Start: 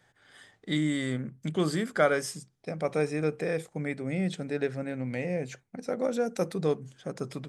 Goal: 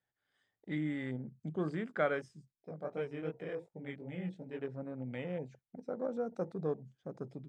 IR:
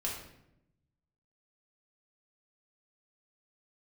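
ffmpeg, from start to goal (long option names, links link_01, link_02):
-filter_complex "[0:a]lowpass=6600,afwtdn=0.0112,asettb=1/sr,asplit=3[link_01][link_02][link_03];[link_01]atrim=end=2.284[link_04];[link_02]atrim=start=2.28:end=4.68,asetpts=PTS-STARTPTS,afade=type=in:duration=0.004:curve=qsin,afade=type=out:start_time=2.396:duration=0.004:curve=qsin,flanger=delay=15:depth=7.4:speed=2.7[link_05];[link_03]atrim=start=4.676[link_06];[link_04][link_05]acrossfade=duration=0.004:curve1=hsin:curve2=qsin[link_07];[link_07][link_06]acrossfade=duration=0.004:curve1=qsin:curve2=hsin,volume=-8dB"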